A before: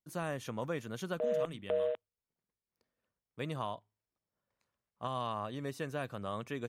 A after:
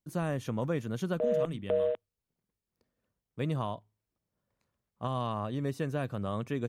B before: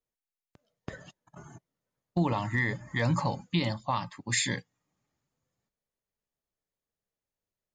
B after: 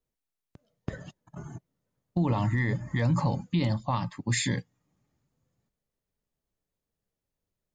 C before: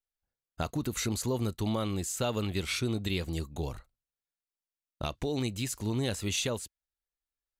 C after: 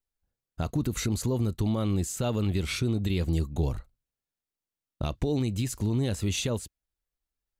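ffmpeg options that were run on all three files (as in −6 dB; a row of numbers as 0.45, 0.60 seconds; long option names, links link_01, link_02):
-af "lowshelf=frequency=420:gain=10,alimiter=limit=-18dB:level=0:latency=1:release=70"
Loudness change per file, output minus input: +4.5, +1.5, +3.5 LU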